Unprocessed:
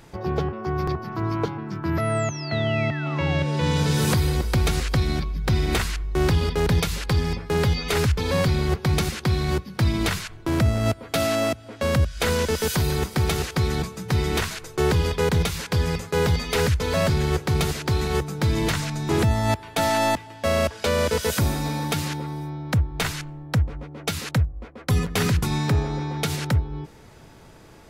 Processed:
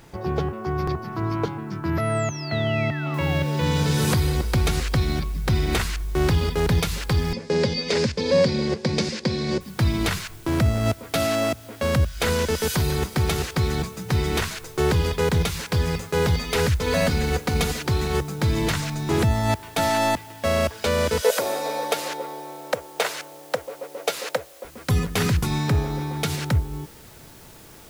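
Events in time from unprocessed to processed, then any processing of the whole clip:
3.14 s: noise floor step -66 dB -50 dB
7.33–9.61 s: cabinet simulation 160–7300 Hz, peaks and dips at 220 Hz +8 dB, 530 Hz +10 dB, 760 Hz -6 dB, 1.3 kHz -9 dB, 3 kHz -3 dB, 4.9 kHz +7 dB
16.86–17.86 s: comb 4.1 ms
21.22–24.65 s: resonant high-pass 530 Hz, resonance Q 3.9

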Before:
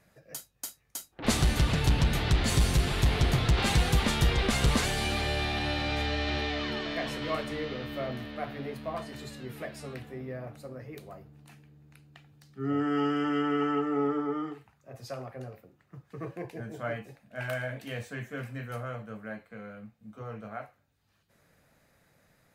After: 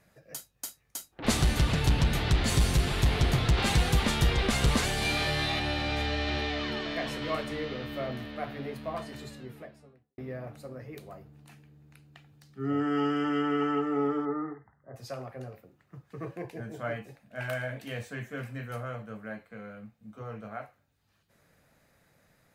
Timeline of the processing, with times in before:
5.00–5.60 s: flutter echo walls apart 3.4 m, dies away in 0.39 s
9.07–10.18 s: studio fade out
14.25–14.96 s: brick-wall FIR low-pass 2.1 kHz

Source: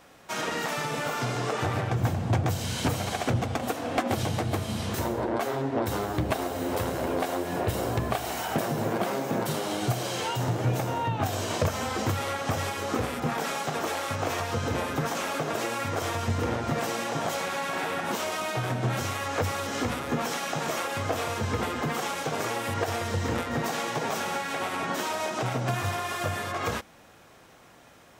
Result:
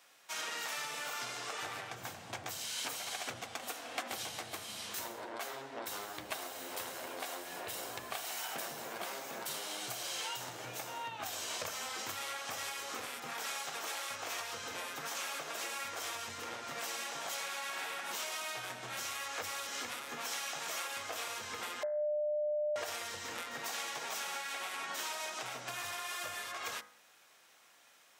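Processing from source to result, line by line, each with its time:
2.65–3.06 s: high-pass 220 Hz 6 dB/octave
21.83–22.76 s: bleep 599 Hz -14 dBFS
whole clip: low-pass 2.4 kHz 6 dB/octave; differentiator; de-hum 54.17 Hz, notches 38; trim +6.5 dB

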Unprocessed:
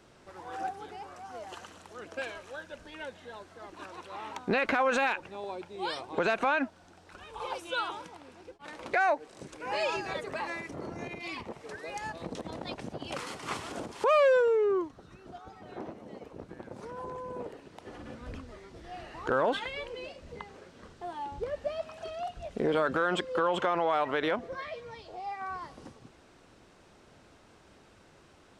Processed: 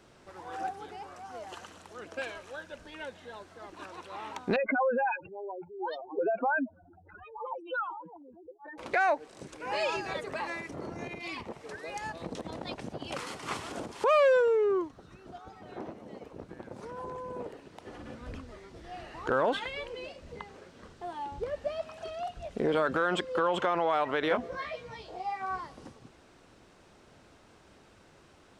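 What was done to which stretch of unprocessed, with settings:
4.56–8.78 s: spectral contrast enhancement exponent 3.8
24.29–25.61 s: doubling 16 ms -2 dB

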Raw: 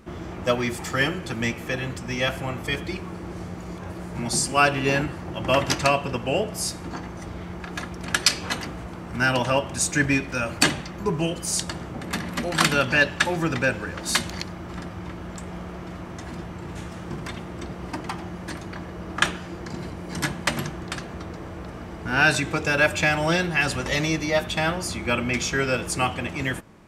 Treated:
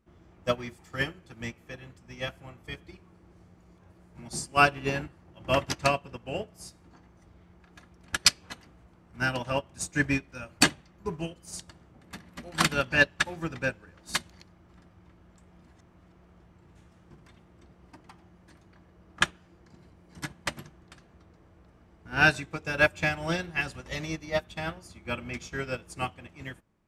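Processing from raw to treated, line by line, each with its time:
15.59–16.40 s: reverse
whole clip: bass shelf 97 Hz +7 dB; upward expansion 2.5:1, over -30 dBFS

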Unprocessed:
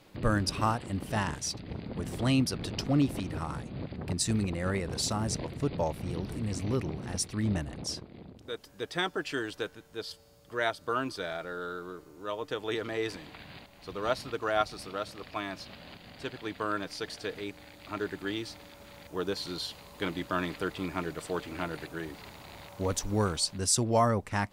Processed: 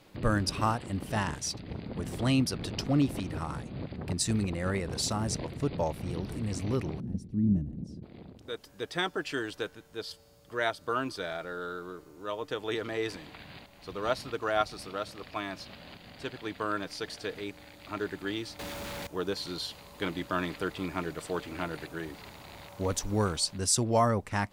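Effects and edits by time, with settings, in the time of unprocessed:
7.00–8.03 s: FFT filter 110 Hz 0 dB, 200 Hz +7 dB, 1.1 kHz -27 dB
18.59–19.07 s: waveshaping leveller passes 5

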